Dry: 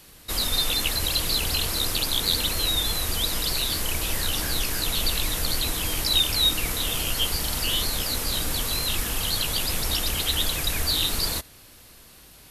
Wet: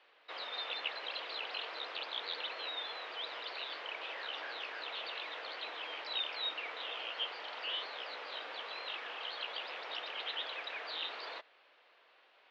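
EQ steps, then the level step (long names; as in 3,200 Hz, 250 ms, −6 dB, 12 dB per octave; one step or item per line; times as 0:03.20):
high-pass filter 500 Hz 24 dB per octave
low-pass filter 3,200 Hz 24 dB per octave
high-frequency loss of the air 78 metres
−7.5 dB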